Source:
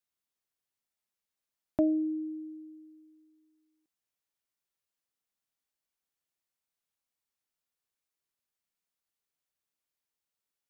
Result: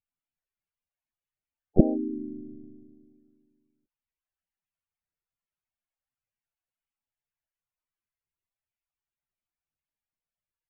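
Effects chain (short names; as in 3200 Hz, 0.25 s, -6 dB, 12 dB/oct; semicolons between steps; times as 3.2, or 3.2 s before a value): monotone LPC vocoder at 8 kHz 150 Hz; harmoniser -5 st -4 dB, -3 st -3 dB, +4 st -7 dB; loudest bins only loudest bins 32; gain -3 dB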